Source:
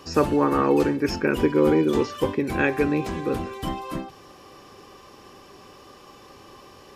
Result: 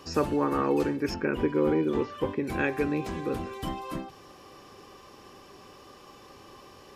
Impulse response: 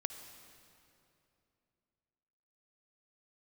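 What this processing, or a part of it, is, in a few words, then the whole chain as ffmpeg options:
parallel compression: -filter_complex "[0:a]asplit=2[link_01][link_02];[link_02]acompressor=threshold=-30dB:ratio=6,volume=-4.5dB[link_03];[link_01][link_03]amix=inputs=2:normalize=0,asettb=1/sr,asplit=3[link_04][link_05][link_06];[link_04]atrim=end=1.144[link_07];[link_05]atrim=start=1.14:end=2.43,asetpts=PTS-STARTPTS,afade=type=in:duration=0.004:curve=qsin,afade=type=out:start_time=1.286:duration=0.004:curve=qsin,acrossover=split=3100[link_08][link_09];[link_09]acompressor=threshold=-53dB:ratio=4:attack=1:release=60[link_10];[link_08][link_10]amix=inputs=2:normalize=0[link_11];[link_06]atrim=start=2.426[link_12];[link_07][link_11]acrossfade=duration=0.004:curve1=hsin:curve2=qsin[link_13];[link_13][link_12]acrossfade=duration=0.004:curve1=qsin:curve2=hsin,volume=-7dB"

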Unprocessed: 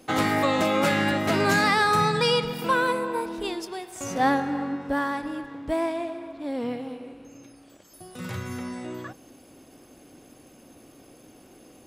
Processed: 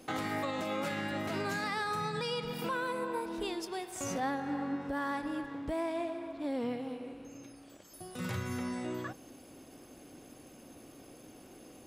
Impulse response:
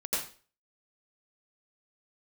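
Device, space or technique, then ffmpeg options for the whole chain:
stacked limiters: -af "alimiter=limit=-16.5dB:level=0:latency=1:release=483,alimiter=limit=-20dB:level=0:latency=1:release=143,alimiter=limit=-24dB:level=0:latency=1:release=455,volume=-2dB"

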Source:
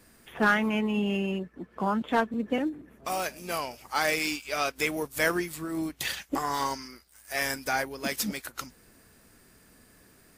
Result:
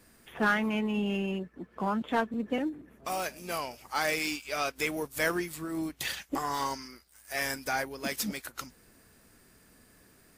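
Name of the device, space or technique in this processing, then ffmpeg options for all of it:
parallel distortion: -filter_complex "[0:a]asplit=2[link_01][link_02];[link_02]asoftclip=type=hard:threshold=-27.5dB,volume=-12dB[link_03];[link_01][link_03]amix=inputs=2:normalize=0,volume=-4dB"

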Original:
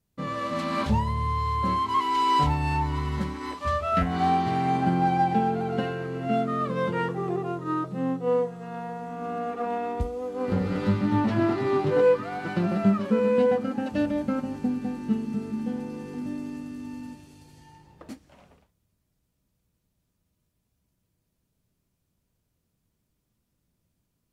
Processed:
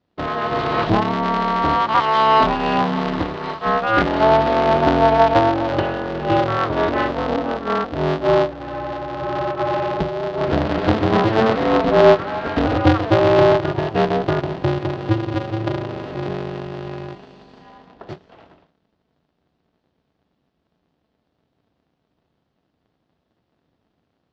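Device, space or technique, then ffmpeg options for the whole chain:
ring modulator pedal into a guitar cabinet: -af "aeval=exprs='val(0)*sgn(sin(2*PI*110*n/s))':channel_layout=same,highpass=83,equalizer=frequency=210:width_type=q:width=4:gain=-3,equalizer=frequency=690:width_type=q:width=4:gain=4,equalizer=frequency=2300:width_type=q:width=4:gain=-4,lowpass=frequency=4200:width=0.5412,lowpass=frequency=4200:width=1.3066,volume=7.5dB"

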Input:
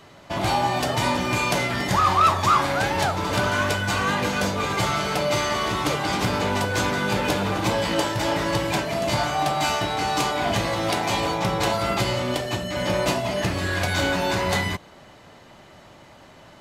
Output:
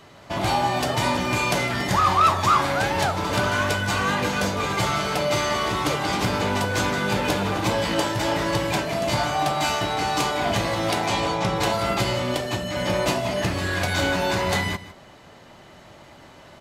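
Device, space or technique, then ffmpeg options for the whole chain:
ducked delay: -filter_complex "[0:a]asettb=1/sr,asplit=3[link_01][link_02][link_03];[link_01]atrim=end=11.074[link_04];[link_02]atrim=start=11.07:end=11.56,asetpts=PTS-STARTPTS,afade=type=in:duration=0.004:curve=qsin,afade=type=out:start_time=0.486:duration=0.004:curve=qsin,lowpass=9600[link_05];[link_03]atrim=start=11.556[link_06];[link_04][link_05]acrossfade=duration=0.004:curve1=hsin:curve2=qsin[link_07];[link_07][link_06]acrossfade=duration=0.004:curve1=qsin:curve2=hsin,asplit=3[link_08][link_09][link_10];[link_09]adelay=156,volume=-4.5dB[link_11];[link_10]apad=whole_len=739359[link_12];[link_11][link_12]sidechaincompress=threshold=-32dB:ratio=6:attack=16:release=1340[link_13];[link_08][link_13]amix=inputs=2:normalize=0"

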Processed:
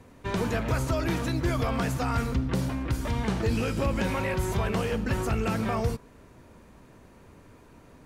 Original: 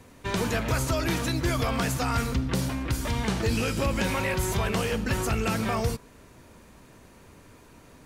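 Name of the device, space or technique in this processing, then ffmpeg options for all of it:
behind a face mask: -af "highshelf=frequency=2300:gain=-8"

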